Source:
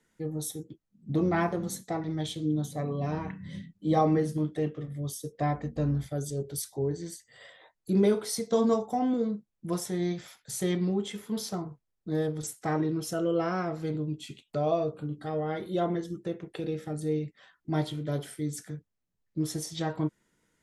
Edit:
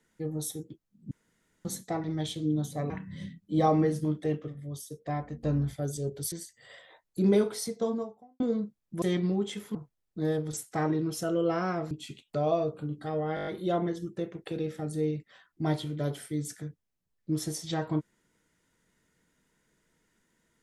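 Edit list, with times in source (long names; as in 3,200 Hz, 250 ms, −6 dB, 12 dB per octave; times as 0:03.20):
0:01.11–0:01.65: fill with room tone
0:02.90–0:03.23: remove
0:04.81–0:05.74: clip gain −4.5 dB
0:06.65–0:07.03: remove
0:08.13–0:09.11: fade out and dull
0:09.73–0:10.60: remove
0:11.33–0:11.65: remove
0:13.81–0:14.11: remove
0:15.55: stutter 0.02 s, 7 plays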